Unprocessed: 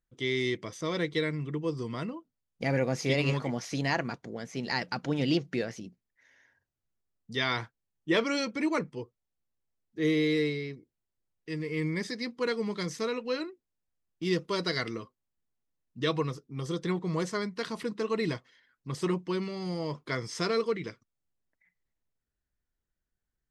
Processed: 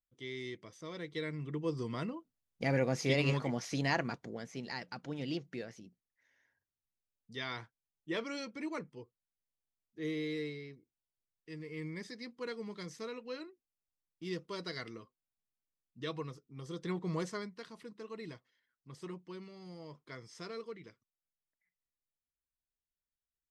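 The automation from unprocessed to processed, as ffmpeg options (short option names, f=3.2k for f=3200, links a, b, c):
-af "volume=3.5dB,afade=t=in:st=1.03:d=0.73:silence=0.316228,afade=t=out:st=4.24:d=0.51:silence=0.398107,afade=t=in:st=16.68:d=0.41:silence=0.473151,afade=t=out:st=17.09:d=0.57:silence=0.281838"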